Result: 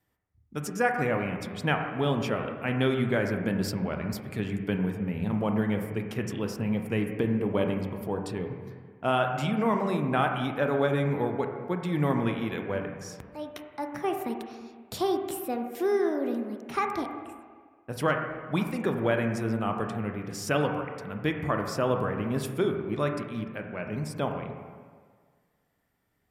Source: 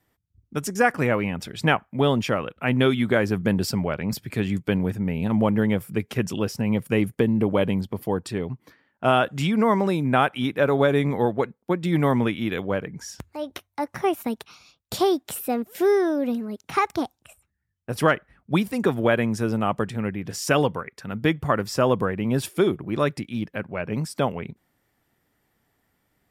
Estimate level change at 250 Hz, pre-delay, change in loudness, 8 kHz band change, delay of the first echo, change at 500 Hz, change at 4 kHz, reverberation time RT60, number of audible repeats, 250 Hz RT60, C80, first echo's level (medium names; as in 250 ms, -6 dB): -5.5 dB, 23 ms, -5.5 dB, -7.0 dB, no echo, -5.5 dB, -7.0 dB, 1.7 s, no echo, 1.6 s, 6.5 dB, no echo